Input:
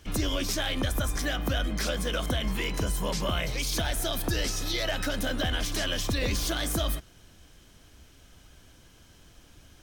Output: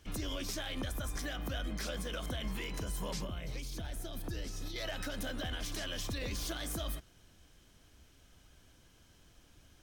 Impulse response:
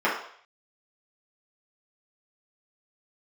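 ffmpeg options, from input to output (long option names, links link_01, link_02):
-filter_complex "[0:a]alimiter=limit=-21dB:level=0:latency=1:release=71,asettb=1/sr,asplit=3[link_01][link_02][link_03];[link_01]atrim=end=3.194[link_04];[link_02]atrim=start=3.19:end=4.76,asetpts=PTS-STARTPTS,afade=type=in:duration=0.004:curve=qsin,afade=type=out:start_time=1.566:duration=0.004:curve=qsin,acrossover=split=430[link_05][link_06];[link_06]acompressor=threshold=-39dB:ratio=6[link_07];[link_05][link_07]amix=inputs=2:normalize=0[link_08];[link_03]atrim=start=4.756[link_09];[link_04][link_08]acrossfade=duration=0.004:curve1=hsin:curve2=qsin[link_10];[link_10][link_09]acrossfade=duration=0.004:curve1=qsin:curve2=hsin,volume=-7.5dB"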